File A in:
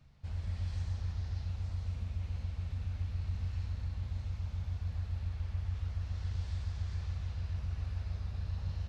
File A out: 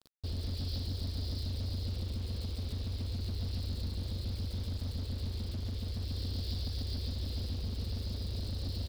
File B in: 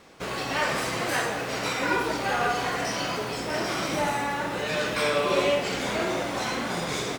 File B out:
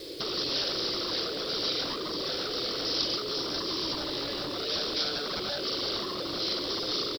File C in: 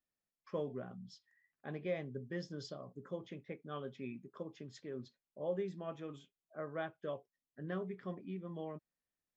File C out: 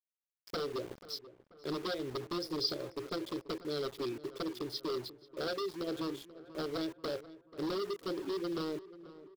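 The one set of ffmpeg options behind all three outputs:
ffmpeg -i in.wav -filter_complex "[0:a]firequalizer=gain_entry='entry(120,0);entry(210,-15);entry(320,13);entry(540,6);entry(810,-21);entry(2200,-3)':delay=0.05:min_phase=1,acompressor=threshold=-37dB:ratio=4,aresample=11025,aeval=exprs='0.0141*(abs(mod(val(0)/0.0141+3,4)-2)-1)':channel_layout=same,aresample=44100,aexciter=amount=10.2:drive=4.5:freq=3600,aeval=exprs='val(0)*gte(abs(val(0)),0.00251)':channel_layout=same,asplit=2[link_01][link_02];[link_02]adelay=486,lowpass=frequency=2100:poles=1,volume=-16dB,asplit=2[link_03][link_04];[link_04]adelay=486,lowpass=frequency=2100:poles=1,volume=0.53,asplit=2[link_05][link_06];[link_06]adelay=486,lowpass=frequency=2100:poles=1,volume=0.53,asplit=2[link_07][link_08];[link_08]adelay=486,lowpass=frequency=2100:poles=1,volume=0.53,asplit=2[link_09][link_10];[link_10]adelay=486,lowpass=frequency=2100:poles=1,volume=0.53[link_11];[link_03][link_05][link_07][link_09][link_11]amix=inputs=5:normalize=0[link_12];[link_01][link_12]amix=inputs=2:normalize=0,volume=6dB" out.wav

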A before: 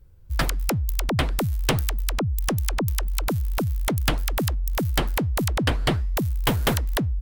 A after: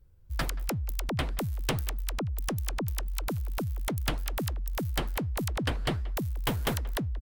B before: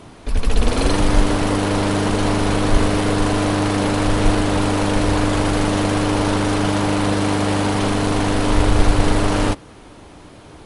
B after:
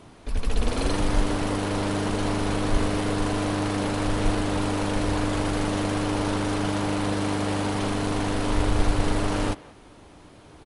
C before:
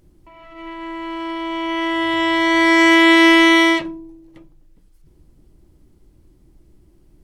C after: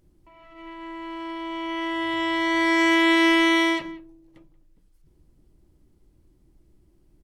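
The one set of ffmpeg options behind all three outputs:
ffmpeg -i in.wav -filter_complex "[0:a]asplit=2[link_01][link_02];[link_02]adelay=180,highpass=300,lowpass=3400,asoftclip=type=hard:threshold=-9.5dB,volume=-19dB[link_03];[link_01][link_03]amix=inputs=2:normalize=0,volume=-7.5dB" out.wav

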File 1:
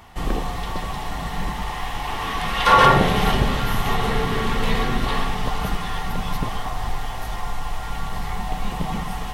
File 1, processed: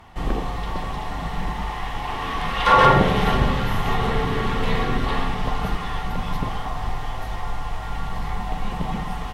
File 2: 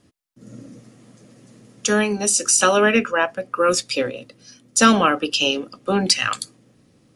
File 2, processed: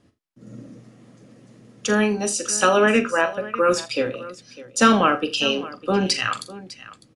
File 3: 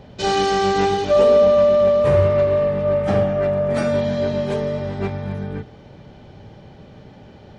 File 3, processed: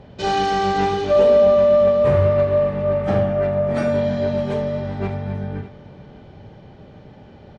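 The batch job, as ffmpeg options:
ffmpeg -i in.wav -filter_complex "[0:a]aemphasis=mode=reproduction:type=cd,asplit=2[link_01][link_02];[link_02]aecho=0:1:42|80|603:0.282|0.126|0.133[link_03];[link_01][link_03]amix=inputs=2:normalize=0,volume=-1dB" out.wav

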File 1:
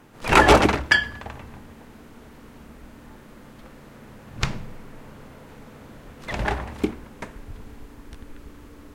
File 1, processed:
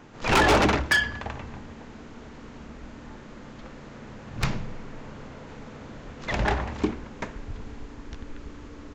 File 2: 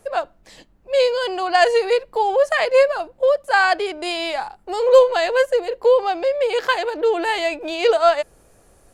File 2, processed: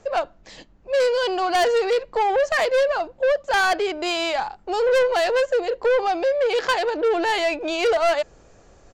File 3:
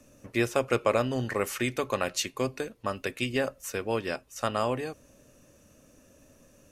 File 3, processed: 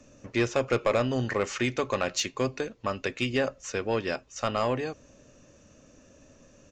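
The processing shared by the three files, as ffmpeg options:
ffmpeg -i in.wav -af "aresample=16000,aresample=44100,asoftclip=type=tanh:threshold=-18dB,volume=2.5dB" out.wav

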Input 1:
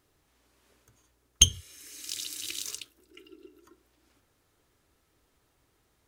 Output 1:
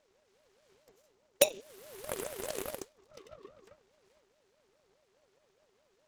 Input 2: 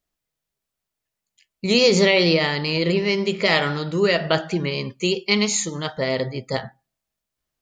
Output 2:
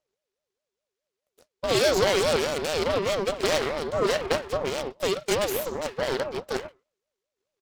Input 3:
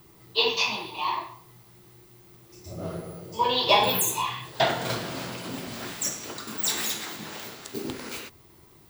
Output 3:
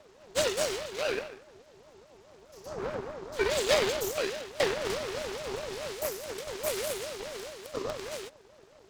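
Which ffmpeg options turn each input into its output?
ffmpeg -i in.wav -filter_complex "[0:a]aresample=16000,aresample=44100,asplit=2[link_01][link_02];[link_02]acompressor=threshold=-29dB:ratio=6,volume=2dB[link_03];[link_01][link_03]amix=inputs=2:normalize=0,aeval=exprs='abs(val(0))':channel_layout=same,aeval=exprs='val(0)*sin(2*PI*500*n/s+500*0.25/4.8*sin(2*PI*4.8*n/s))':channel_layout=same,volume=-4.5dB" out.wav

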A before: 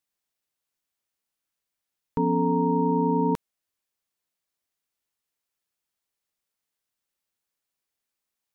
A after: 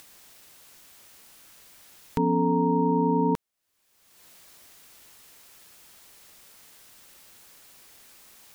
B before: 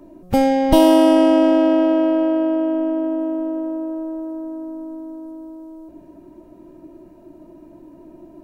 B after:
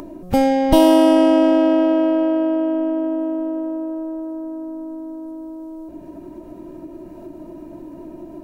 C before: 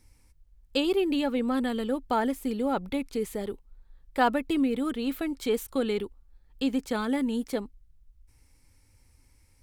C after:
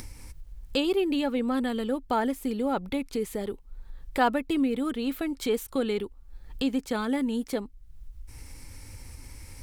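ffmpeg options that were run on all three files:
ffmpeg -i in.wav -af "acompressor=mode=upward:threshold=-27dB:ratio=2.5" out.wav

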